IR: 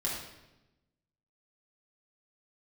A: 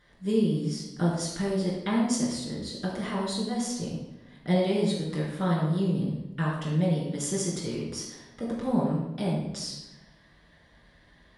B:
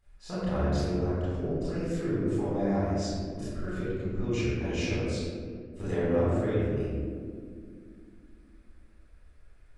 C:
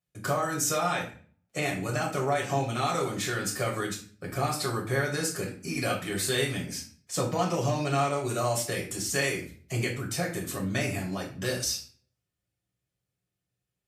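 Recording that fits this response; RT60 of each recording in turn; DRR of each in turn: A; 1.0 s, 2.2 s, 0.45 s; -5.0 dB, -12.0 dB, -3.0 dB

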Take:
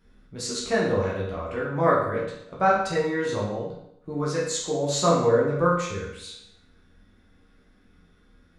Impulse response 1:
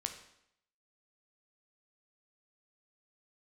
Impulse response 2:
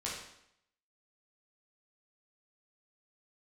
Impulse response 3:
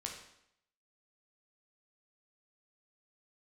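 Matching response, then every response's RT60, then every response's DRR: 2; 0.75 s, 0.75 s, 0.75 s; 5.0 dB, -6.0 dB, 0.0 dB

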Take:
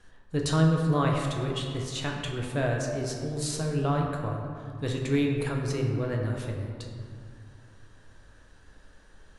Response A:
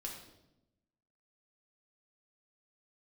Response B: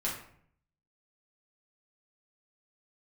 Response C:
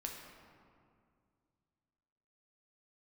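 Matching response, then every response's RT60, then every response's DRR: C; 0.90 s, 0.60 s, 2.2 s; -2.0 dB, -6.0 dB, 0.0 dB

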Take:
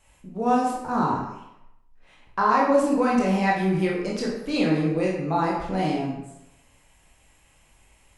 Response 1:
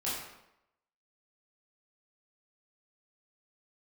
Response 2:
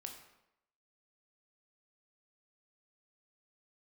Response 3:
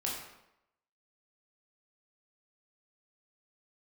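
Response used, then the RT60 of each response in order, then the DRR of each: 3; 0.85 s, 0.85 s, 0.85 s; -9.0 dB, 3.0 dB, -4.0 dB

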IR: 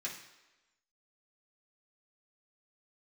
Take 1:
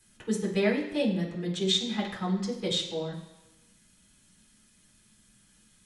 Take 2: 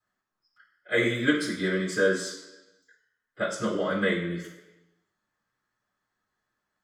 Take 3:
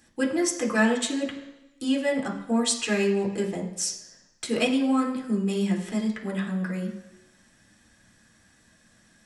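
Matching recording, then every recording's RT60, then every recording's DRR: 1; 1.1 s, 1.1 s, 1.1 s; -6.0 dB, -11.5 dB, -1.5 dB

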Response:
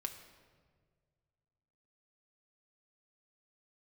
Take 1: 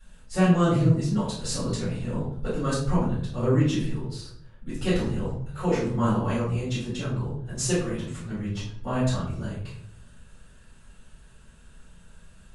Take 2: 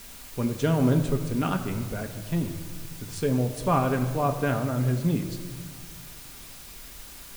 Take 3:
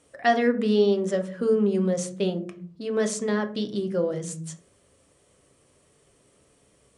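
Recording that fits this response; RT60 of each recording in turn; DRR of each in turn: 2; 0.65 s, 1.7 s, 0.45 s; -11.5 dB, 4.5 dB, 5.5 dB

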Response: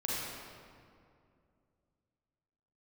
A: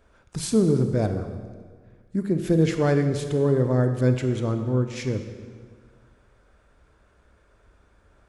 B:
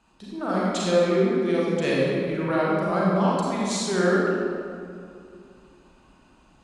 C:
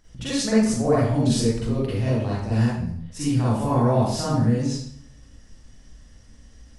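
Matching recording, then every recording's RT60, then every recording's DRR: B; 1.7 s, 2.4 s, 0.60 s; 7.0 dB, -6.5 dB, -9.0 dB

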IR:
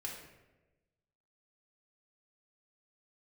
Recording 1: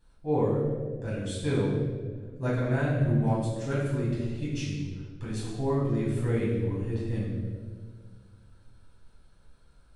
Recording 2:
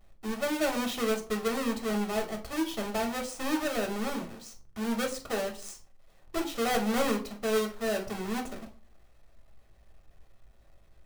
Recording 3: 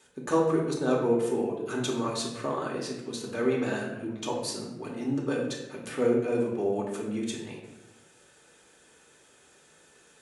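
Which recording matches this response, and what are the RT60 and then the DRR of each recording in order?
3; 1.7 s, no single decay rate, 1.1 s; -8.0 dB, 1.5 dB, -2.5 dB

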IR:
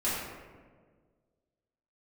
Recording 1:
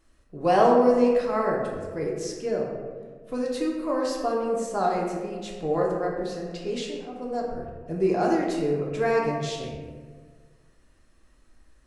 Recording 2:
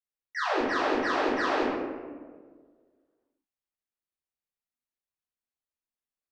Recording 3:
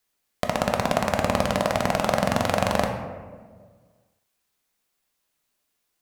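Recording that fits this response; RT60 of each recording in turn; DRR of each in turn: 2; 1.6 s, 1.6 s, 1.6 s; -2.5 dB, -11.0 dB, 3.0 dB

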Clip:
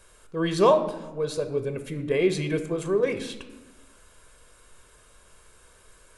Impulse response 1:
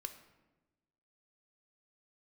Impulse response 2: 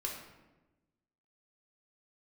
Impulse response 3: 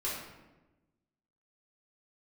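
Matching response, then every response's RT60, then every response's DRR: 1; 1.1 s, 1.1 s, 1.1 s; 7.5 dB, -1.5 dB, -8.0 dB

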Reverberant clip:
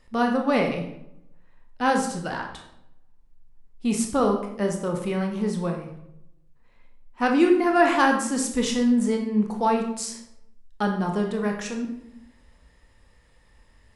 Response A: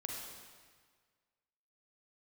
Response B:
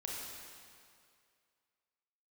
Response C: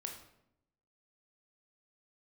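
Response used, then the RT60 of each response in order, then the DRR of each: C; 1.6 s, 2.2 s, 0.80 s; -1.0 dB, -3.5 dB, 2.0 dB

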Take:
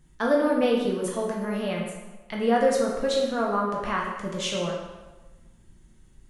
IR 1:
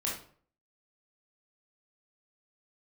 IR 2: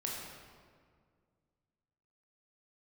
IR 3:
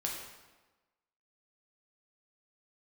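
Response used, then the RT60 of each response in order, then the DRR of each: 3; 0.50 s, 2.0 s, 1.2 s; -5.0 dB, -3.0 dB, -2.0 dB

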